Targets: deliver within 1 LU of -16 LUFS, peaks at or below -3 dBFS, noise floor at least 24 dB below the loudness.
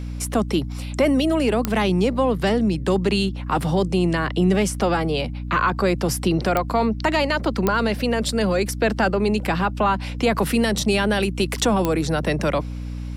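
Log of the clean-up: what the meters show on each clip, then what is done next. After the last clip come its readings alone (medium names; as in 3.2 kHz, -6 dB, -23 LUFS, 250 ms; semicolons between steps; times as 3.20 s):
clicks found 4; hum 60 Hz; highest harmonic 300 Hz; hum level -27 dBFS; loudness -21.0 LUFS; peak level -4.0 dBFS; loudness target -16.0 LUFS
-> de-click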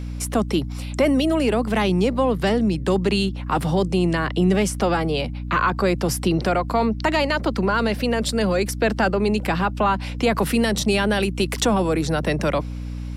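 clicks found 0; hum 60 Hz; highest harmonic 300 Hz; hum level -27 dBFS
-> de-hum 60 Hz, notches 5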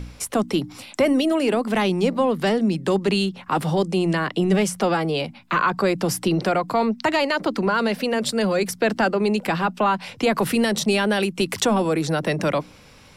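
hum not found; loudness -22.0 LUFS; peak level -7.5 dBFS; loudness target -16.0 LUFS
-> trim +6 dB; peak limiter -3 dBFS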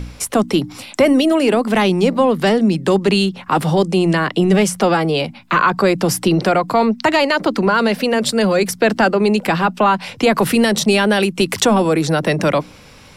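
loudness -16.0 LUFS; peak level -3.0 dBFS; noise floor -42 dBFS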